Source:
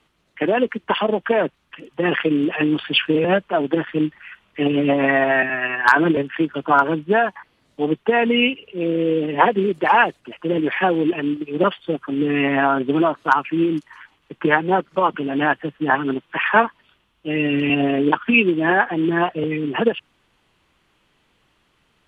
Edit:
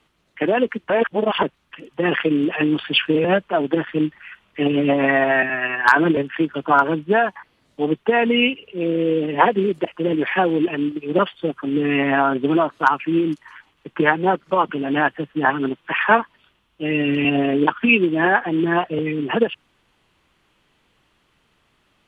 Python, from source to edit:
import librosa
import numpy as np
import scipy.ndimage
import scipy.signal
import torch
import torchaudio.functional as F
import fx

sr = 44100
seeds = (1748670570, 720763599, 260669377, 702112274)

y = fx.edit(x, sr, fx.reverse_span(start_s=0.9, length_s=0.53),
    fx.cut(start_s=9.85, length_s=0.45), tone=tone)